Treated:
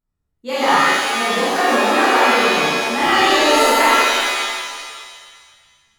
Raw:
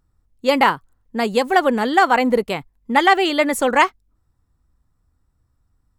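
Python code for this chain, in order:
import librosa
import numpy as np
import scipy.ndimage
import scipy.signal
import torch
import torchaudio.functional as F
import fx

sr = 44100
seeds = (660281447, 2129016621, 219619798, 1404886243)

p1 = x + fx.room_early_taps(x, sr, ms=(33, 44), db=(-5.0, -4.0), dry=0)
p2 = fx.noise_reduce_blind(p1, sr, reduce_db=8)
p3 = fx.buffer_glitch(p2, sr, at_s=(3.01,), block=512, repeats=5)
p4 = fx.rev_shimmer(p3, sr, seeds[0], rt60_s=1.7, semitones=7, shimmer_db=-2, drr_db=-9.5)
y = F.gain(torch.from_numpy(p4), -12.5).numpy()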